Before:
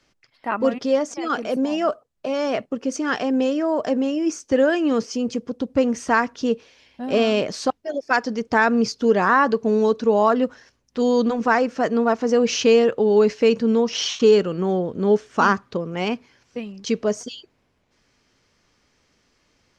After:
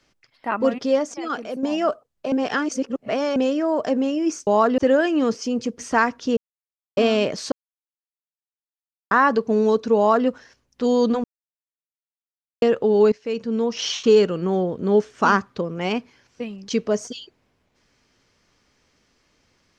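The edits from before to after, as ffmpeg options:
-filter_complex "[0:a]asplit=14[s0][s1][s2][s3][s4][s5][s6][s7][s8][s9][s10][s11][s12][s13];[s0]atrim=end=1.63,asetpts=PTS-STARTPTS,afade=t=out:st=0.95:d=0.68:silence=0.398107[s14];[s1]atrim=start=1.63:end=2.322,asetpts=PTS-STARTPTS,afade=t=in:d=0.004:c=hsin:silence=0.398107[s15];[s2]atrim=start=2.318:end=3.362,asetpts=PTS-STARTPTS,areverse[s16];[s3]atrim=start=3.358:end=4.472[s17];[s4]atrim=start=10.128:end=10.442[s18];[s5]atrim=start=4.468:end=5.482[s19];[s6]atrim=start=5.948:end=6.53,asetpts=PTS-STARTPTS,afade=t=out:st=0.578:d=0.004:c=hsin[s20];[s7]atrim=start=6.53:end=7.13,asetpts=PTS-STARTPTS,volume=0[s21];[s8]atrim=start=7.13:end=7.68,asetpts=PTS-STARTPTS,afade=t=in:d=0.004:c=hsin,afade=t=out:st=0.546:d=0.004:c=hsin[s22];[s9]atrim=start=7.68:end=9.27,asetpts=PTS-STARTPTS,volume=0[s23];[s10]atrim=start=9.27:end=11.4,asetpts=PTS-STARTPTS,afade=t=in:d=0.004:c=hsin,afade=t=out:st=2.126:d=0.004:c=hsin[s24];[s11]atrim=start=11.4:end=12.78,asetpts=PTS-STARTPTS,volume=0[s25];[s12]atrim=start=12.78:end=13.28,asetpts=PTS-STARTPTS,afade=t=in:d=0.004:c=hsin,afade=t=out:st=0.496:d=0.004:c=hsin:silence=0.112202[s26];[s13]atrim=start=13.28,asetpts=PTS-STARTPTS,afade=t=in:d=1.19:c=qsin:silence=0.112202[s27];[s14][s15]concat=n=2:v=0:a=1[s28];[s28][s16]acrossfade=d=0.004:c1=hsin:c2=hsin[s29];[s29][s17]acrossfade=d=0.004:c1=hsin:c2=hsin[s30];[s30][s18]acrossfade=d=0.004:c1=hsin:c2=hsin[s31];[s31][s19]acrossfade=d=0.004:c1=hsin:c2=hsin[s32];[s20][s21][s22][s23][s24][s25][s26][s27]concat=n=8:v=0:a=1[s33];[s32][s33]acrossfade=d=0.004:c1=hsin:c2=hsin"

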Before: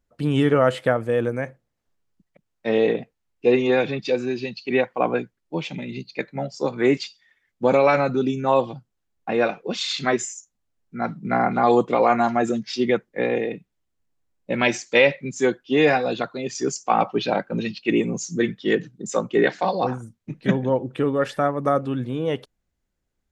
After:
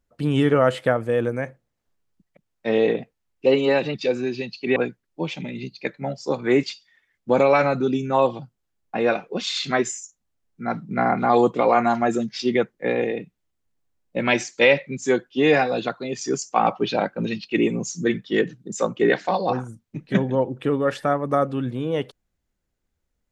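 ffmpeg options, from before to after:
-filter_complex "[0:a]asplit=4[s0][s1][s2][s3];[s0]atrim=end=3.464[s4];[s1]atrim=start=3.46:end=3.98,asetpts=PTS-STARTPTS,asetrate=47628,aresample=44100,atrim=end_sample=21233,asetpts=PTS-STARTPTS[s5];[s2]atrim=start=3.976:end=4.802[s6];[s3]atrim=start=5.098[s7];[s4][s5]acrossfade=d=0.004:c1=hsin:c2=hsin[s8];[s8][s6]acrossfade=d=0.004:c1=hsin:c2=hsin[s9];[s9][s7]acrossfade=d=0.004:c1=hsin:c2=hsin"

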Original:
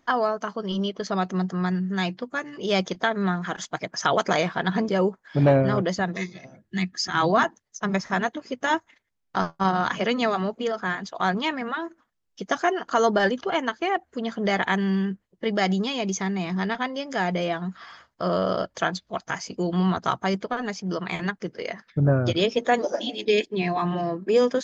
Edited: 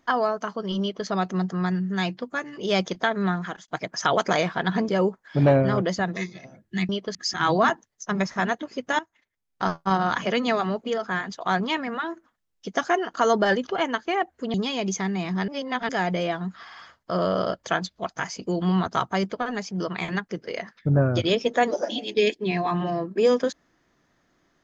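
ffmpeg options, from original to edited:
-filter_complex "[0:a]asplit=10[s0][s1][s2][s3][s4][s5][s6][s7][s8][s9];[s0]atrim=end=3.68,asetpts=PTS-STARTPTS,afade=t=out:st=3.41:d=0.27[s10];[s1]atrim=start=3.68:end=6.892,asetpts=PTS-STARTPTS,afade=t=in:d=0.004:c=hsin[s11];[s2]atrim=start=0.808:end=1.072[s12];[s3]atrim=start=6.888:end=8.73,asetpts=PTS-STARTPTS,afade=t=out:st=1.838:d=0.004:c=hsin:silence=0.11885[s13];[s4]atrim=start=8.73:end=14.282,asetpts=PTS-STARTPTS,afade=t=in:d=0.7:silence=0.11885[s14];[s5]atrim=start=15.748:end=16.692[s15];[s6]atrim=start=16.688:end=17.102,asetpts=PTS-STARTPTS,areverse[s16];[s7]atrim=start=17.098:end=17.902[s17];[s8]atrim=start=17.848:end=17.902[s18];[s9]atrim=start=17.848[s19];[s10][s11]concat=n=2:v=0:a=1[s20];[s20][s12]acrossfade=d=0.004:c1=hsin:c2=hsin[s21];[s13][s14]concat=n=2:v=0:a=1[s22];[s21][s22]acrossfade=d=0.004:c1=hsin:c2=hsin[s23];[s23][s15]acrossfade=d=0.004:c1=hsin:c2=hsin[s24];[s24][s16]acrossfade=d=0.004:c1=hsin:c2=hsin[s25];[s25][s17]acrossfade=d=0.004:c1=hsin:c2=hsin[s26];[s26][s18]acrossfade=d=0.004:c1=hsin:c2=hsin[s27];[s27][s19]acrossfade=d=0.004:c1=hsin:c2=hsin"

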